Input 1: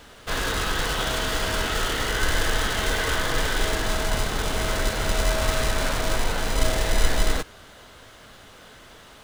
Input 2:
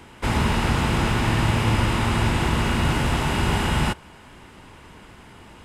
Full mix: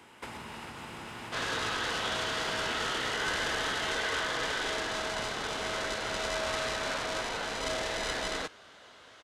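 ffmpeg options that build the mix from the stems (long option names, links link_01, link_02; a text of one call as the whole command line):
ffmpeg -i stem1.wav -i stem2.wav -filter_complex "[0:a]lowpass=6500,adelay=1050,volume=-5dB[link_01];[1:a]acompressor=threshold=-30dB:ratio=5,volume=-6.5dB[link_02];[link_01][link_02]amix=inputs=2:normalize=0,highpass=frequency=390:poles=1" out.wav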